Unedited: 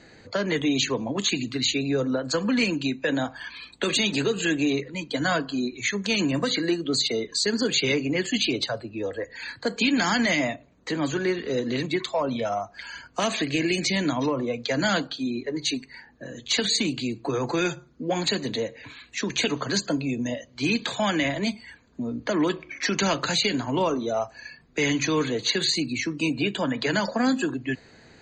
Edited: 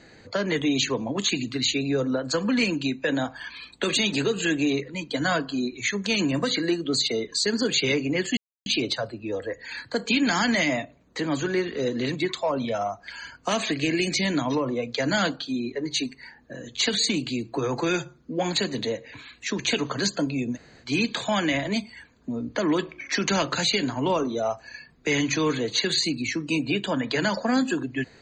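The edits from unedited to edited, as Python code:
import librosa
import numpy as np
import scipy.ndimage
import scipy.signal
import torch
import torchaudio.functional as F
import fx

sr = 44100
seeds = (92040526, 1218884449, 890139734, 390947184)

y = fx.edit(x, sr, fx.insert_silence(at_s=8.37, length_s=0.29),
    fx.room_tone_fill(start_s=20.26, length_s=0.28, crossfade_s=0.06), tone=tone)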